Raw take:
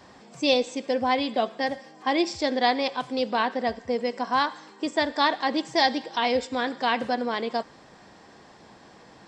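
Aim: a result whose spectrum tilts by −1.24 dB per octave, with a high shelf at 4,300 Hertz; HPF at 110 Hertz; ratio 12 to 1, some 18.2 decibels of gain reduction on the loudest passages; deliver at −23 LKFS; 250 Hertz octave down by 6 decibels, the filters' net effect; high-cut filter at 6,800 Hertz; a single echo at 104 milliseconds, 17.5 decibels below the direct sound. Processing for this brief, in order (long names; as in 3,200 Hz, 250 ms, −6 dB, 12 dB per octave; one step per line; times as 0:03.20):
high-pass filter 110 Hz
low-pass filter 6,800 Hz
parametric band 250 Hz −7 dB
high-shelf EQ 4,300 Hz −7 dB
downward compressor 12 to 1, threshold −37 dBFS
single-tap delay 104 ms −17.5 dB
level +19 dB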